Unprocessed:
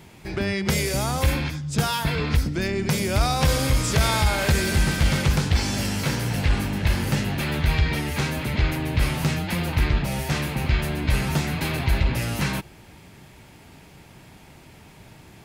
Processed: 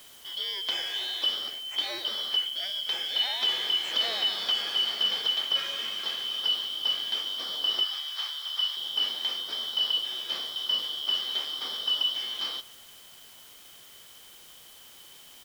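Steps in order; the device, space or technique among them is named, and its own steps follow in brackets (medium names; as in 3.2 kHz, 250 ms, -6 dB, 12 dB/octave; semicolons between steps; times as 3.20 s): split-band scrambled radio (four frequency bands reordered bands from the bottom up 3412; band-pass 360–3400 Hz; white noise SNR 21 dB); 7.83–8.77 s: Chebyshev high-pass 1.1 kHz, order 2; feedback delay 148 ms, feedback 47%, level -22 dB; trim -5.5 dB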